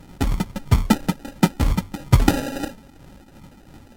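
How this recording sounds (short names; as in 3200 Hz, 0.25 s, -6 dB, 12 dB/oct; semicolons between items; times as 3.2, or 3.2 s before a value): a buzz of ramps at a fixed pitch in blocks of 32 samples; phasing stages 6, 3 Hz, lowest notch 110–2500 Hz; aliases and images of a low sample rate 1100 Hz, jitter 0%; Vorbis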